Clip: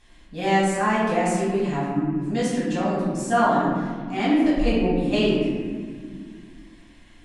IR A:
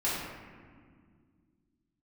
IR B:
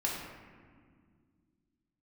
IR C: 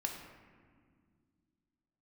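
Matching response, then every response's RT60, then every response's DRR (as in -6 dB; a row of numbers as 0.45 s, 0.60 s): A; 1.9 s, 1.9 s, 1.9 s; -9.0 dB, -3.5 dB, 2.0 dB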